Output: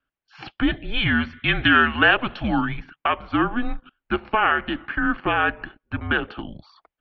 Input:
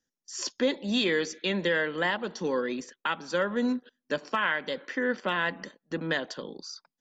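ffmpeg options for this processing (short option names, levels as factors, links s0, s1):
-filter_complex "[0:a]asettb=1/sr,asplit=3[s0][s1][s2];[s0]atrim=end=1.484[s3];[s1]atrim=start=1.48:end=2.65,asetpts=PTS-STARTPTS,afade=t=in:d=0.004:c=qsin,afade=t=out:st=1.166:d=0.004:c=qsin,highshelf=f=2000:g=11[s4];[s2]atrim=start=2.646[s5];[s3][s4]acrossfade=d=0.004:c1=hsin:c2=qsin[s6];[s6][s5]acrossfade=d=0.004:c1=qsin:c2=hsin,highpass=f=160:t=q:w=0.5412,highpass=f=160:t=q:w=1.307,lowpass=f=3200:t=q:w=0.5176,lowpass=f=3200:t=q:w=0.7071,lowpass=f=3200:t=q:w=1.932,afreqshift=-230,lowshelf=f=250:g=-5.5,volume=2.66"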